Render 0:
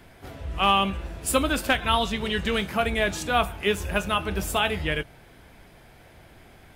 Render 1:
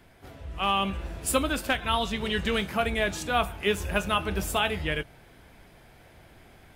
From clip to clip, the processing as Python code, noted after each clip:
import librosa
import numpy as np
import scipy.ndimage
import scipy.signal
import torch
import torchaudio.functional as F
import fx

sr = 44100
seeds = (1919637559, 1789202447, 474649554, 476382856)

y = fx.rider(x, sr, range_db=10, speed_s=0.5)
y = y * librosa.db_to_amplitude(-2.5)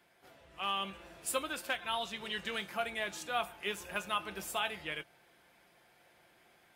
y = fx.highpass(x, sr, hz=570.0, slope=6)
y = y + 0.31 * np.pad(y, (int(5.7 * sr / 1000.0), 0))[:len(y)]
y = y * librosa.db_to_amplitude(-8.0)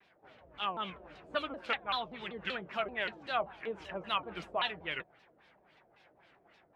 y = fx.filter_lfo_lowpass(x, sr, shape='sine', hz=3.7, low_hz=530.0, high_hz=4300.0, q=1.5)
y = fx.vibrato_shape(y, sr, shape='saw_down', rate_hz=5.2, depth_cents=250.0)